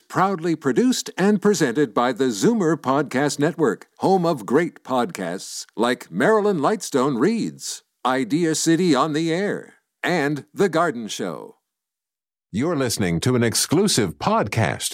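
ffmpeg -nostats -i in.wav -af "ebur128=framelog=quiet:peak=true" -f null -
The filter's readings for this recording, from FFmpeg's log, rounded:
Integrated loudness:
  I:         -21.0 LUFS
  Threshold: -31.1 LUFS
Loudness range:
  LRA:         4.3 LU
  Threshold: -41.6 LUFS
  LRA low:   -24.3 LUFS
  LRA high:  -20.1 LUFS
True peak:
  Peak:       -6.1 dBFS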